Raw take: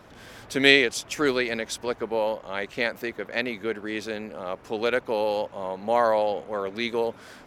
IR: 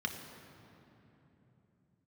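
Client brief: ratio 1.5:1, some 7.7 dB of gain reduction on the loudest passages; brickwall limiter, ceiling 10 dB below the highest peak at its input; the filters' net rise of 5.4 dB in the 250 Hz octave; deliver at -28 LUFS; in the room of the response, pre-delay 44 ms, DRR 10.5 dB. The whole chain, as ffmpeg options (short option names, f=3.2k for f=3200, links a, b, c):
-filter_complex "[0:a]equalizer=f=250:t=o:g=6.5,acompressor=threshold=-31dB:ratio=1.5,alimiter=limit=-19.5dB:level=0:latency=1,asplit=2[a][b];[1:a]atrim=start_sample=2205,adelay=44[c];[b][c]afir=irnorm=-1:irlink=0,volume=-14dB[d];[a][d]amix=inputs=2:normalize=0,volume=3.5dB"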